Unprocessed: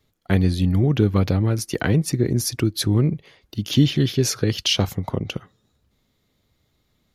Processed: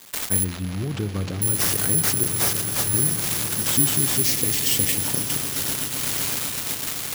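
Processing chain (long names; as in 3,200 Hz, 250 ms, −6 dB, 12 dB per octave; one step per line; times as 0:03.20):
spike at every zero crossing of −14 dBFS
0:02.28–0:02.94: inverse Chebyshev band-stop filter 290–1,800 Hz, stop band 60 dB
echo that builds up and dies away 127 ms, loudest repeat 8, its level −16 dB
bad sample-rate conversion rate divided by 4×, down none, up zero stuff
0:04.20–0:04.95: healed spectral selection 580–1,700 Hz after
in parallel at 0 dB: brickwall limiter −12.5 dBFS, peak gain reduction 20.5 dB
on the sum: noise gate −13 dBFS, range −19 dB
0:00.44–0:01.42: high-frequency loss of the air 150 metres
on a send at −15 dB: convolution reverb RT60 3.0 s, pre-delay 17 ms
on the sum: level −11 dB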